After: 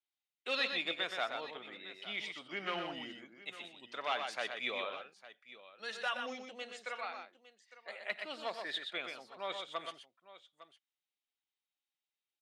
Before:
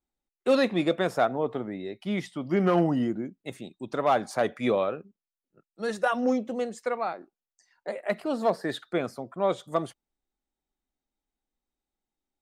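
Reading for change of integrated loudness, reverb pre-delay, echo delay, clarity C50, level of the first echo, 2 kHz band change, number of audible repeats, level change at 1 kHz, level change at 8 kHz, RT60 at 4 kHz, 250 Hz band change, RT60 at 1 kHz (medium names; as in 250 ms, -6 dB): -11.5 dB, no reverb, 91 ms, no reverb, -17.0 dB, -3.0 dB, 3, -11.5 dB, -9.0 dB, no reverb, -23.0 dB, no reverb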